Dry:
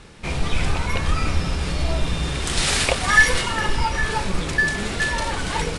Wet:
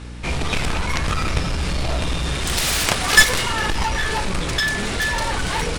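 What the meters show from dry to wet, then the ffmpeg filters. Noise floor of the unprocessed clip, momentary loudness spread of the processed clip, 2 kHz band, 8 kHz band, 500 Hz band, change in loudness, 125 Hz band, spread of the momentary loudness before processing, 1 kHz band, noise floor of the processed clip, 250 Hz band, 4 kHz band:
−28 dBFS, 10 LU, +0.5 dB, +4.0 dB, +0.5 dB, +1.5 dB, +0.5 dB, 9 LU, +1.0 dB, −25 dBFS, +1.0 dB, +3.5 dB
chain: -af "aeval=exprs='0.794*(cos(1*acos(clip(val(0)/0.794,-1,1)))-cos(1*PI/2))+0.0708*(cos(5*acos(clip(val(0)/0.794,-1,1)))-cos(5*PI/2))+0.355*(cos(7*acos(clip(val(0)/0.794,-1,1)))-cos(7*PI/2))':channel_layout=same,equalizer=frequency=170:width_type=o:width=2.6:gain=-2.5,aeval=exprs='val(0)+0.0224*(sin(2*PI*60*n/s)+sin(2*PI*2*60*n/s)/2+sin(2*PI*3*60*n/s)/3+sin(2*PI*4*60*n/s)/4+sin(2*PI*5*60*n/s)/5)':channel_layout=same"

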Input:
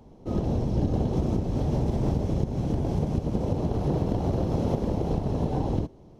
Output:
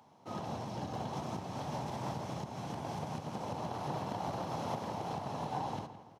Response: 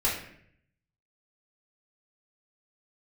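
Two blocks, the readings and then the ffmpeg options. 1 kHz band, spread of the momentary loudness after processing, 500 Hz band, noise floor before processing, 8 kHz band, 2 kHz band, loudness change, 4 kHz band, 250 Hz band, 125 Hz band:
−0.5 dB, 3 LU, −11.0 dB, −51 dBFS, can't be measured, +0.5 dB, −12.0 dB, −0.5 dB, −15.0 dB, −16.0 dB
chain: -filter_complex "[0:a]highpass=frequency=110:width=0.5412,highpass=frequency=110:width=1.3066,lowshelf=frequency=620:width_type=q:width=1.5:gain=-12.5,asplit=2[link_01][link_02];[link_02]adelay=166,lowpass=frequency=3200:poles=1,volume=-12dB,asplit=2[link_03][link_04];[link_04]adelay=166,lowpass=frequency=3200:poles=1,volume=0.45,asplit=2[link_05][link_06];[link_06]adelay=166,lowpass=frequency=3200:poles=1,volume=0.45,asplit=2[link_07][link_08];[link_08]adelay=166,lowpass=frequency=3200:poles=1,volume=0.45,asplit=2[link_09][link_10];[link_10]adelay=166,lowpass=frequency=3200:poles=1,volume=0.45[link_11];[link_01][link_03][link_05][link_07][link_09][link_11]amix=inputs=6:normalize=0,volume=-1dB"

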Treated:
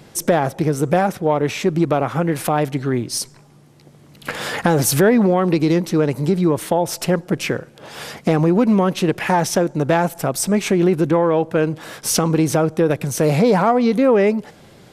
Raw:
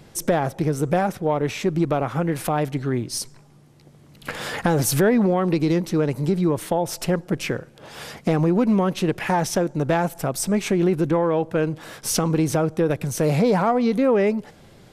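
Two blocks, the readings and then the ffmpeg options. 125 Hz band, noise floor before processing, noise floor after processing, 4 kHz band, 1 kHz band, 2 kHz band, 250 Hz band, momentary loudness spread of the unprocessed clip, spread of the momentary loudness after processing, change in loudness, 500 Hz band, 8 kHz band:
+3.0 dB, −50 dBFS, −47 dBFS, +4.5 dB, +4.5 dB, +4.5 dB, +3.5 dB, 10 LU, 10 LU, +4.0 dB, +4.5 dB, +4.5 dB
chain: -af "lowshelf=frequency=61:gain=-11.5,volume=4.5dB"

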